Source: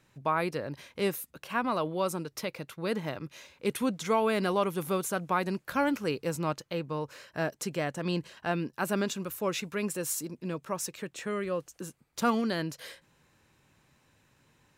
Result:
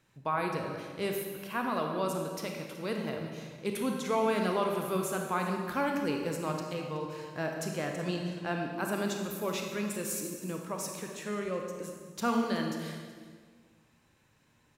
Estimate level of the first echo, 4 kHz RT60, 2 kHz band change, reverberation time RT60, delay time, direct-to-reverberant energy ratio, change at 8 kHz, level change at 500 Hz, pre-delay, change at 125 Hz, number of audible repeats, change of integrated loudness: -17.5 dB, 1.4 s, -2.0 dB, 1.7 s, 0.374 s, 2.0 dB, -2.0 dB, -1.5 dB, 27 ms, -1.5 dB, 1, -1.5 dB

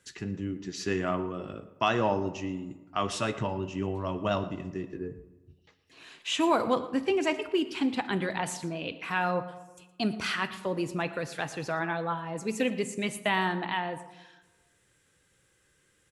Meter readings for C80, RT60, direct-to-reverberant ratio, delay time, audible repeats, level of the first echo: 14.0 dB, 1.2 s, 10.5 dB, 0.116 s, 1, -18.5 dB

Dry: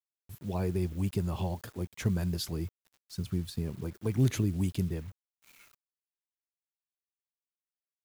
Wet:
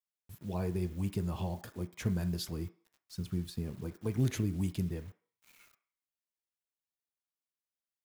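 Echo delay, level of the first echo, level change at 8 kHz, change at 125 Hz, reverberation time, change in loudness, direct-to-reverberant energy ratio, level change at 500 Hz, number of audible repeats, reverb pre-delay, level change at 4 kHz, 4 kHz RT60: none, none, -3.5 dB, -3.5 dB, 0.50 s, -3.0 dB, 8.5 dB, -3.5 dB, none, 3 ms, -3.5 dB, 0.60 s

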